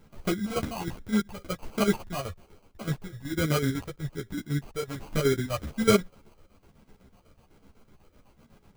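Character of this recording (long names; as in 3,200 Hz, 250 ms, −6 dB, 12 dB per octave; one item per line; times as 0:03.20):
chopped level 8 Hz, depth 65%, duty 60%
phaser sweep stages 6, 1.2 Hz, lowest notch 250–1,800 Hz
aliases and images of a low sample rate 1,800 Hz, jitter 0%
a shimmering, thickened sound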